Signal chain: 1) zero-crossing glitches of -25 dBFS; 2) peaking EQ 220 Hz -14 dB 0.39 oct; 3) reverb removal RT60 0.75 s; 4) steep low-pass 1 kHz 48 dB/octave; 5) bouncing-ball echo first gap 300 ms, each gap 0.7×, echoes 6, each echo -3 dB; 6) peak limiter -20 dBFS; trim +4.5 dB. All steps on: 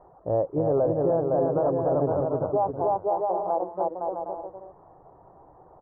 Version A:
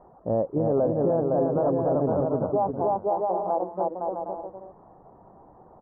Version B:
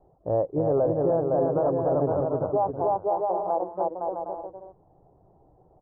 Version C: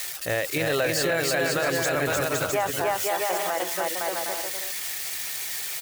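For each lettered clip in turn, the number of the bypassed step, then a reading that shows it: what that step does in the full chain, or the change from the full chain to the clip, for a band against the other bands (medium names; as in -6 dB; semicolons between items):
2, 250 Hz band +3.0 dB; 1, distortion -9 dB; 4, 1 kHz band +1.5 dB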